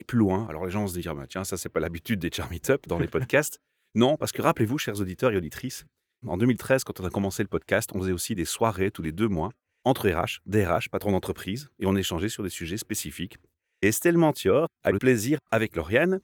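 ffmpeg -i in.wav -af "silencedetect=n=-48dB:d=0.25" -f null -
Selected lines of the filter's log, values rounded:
silence_start: 3.56
silence_end: 3.95 | silence_duration: 0.39
silence_start: 5.84
silence_end: 6.23 | silence_duration: 0.39
silence_start: 9.51
silence_end: 9.85 | silence_duration: 0.34
silence_start: 13.45
silence_end: 13.82 | silence_duration: 0.38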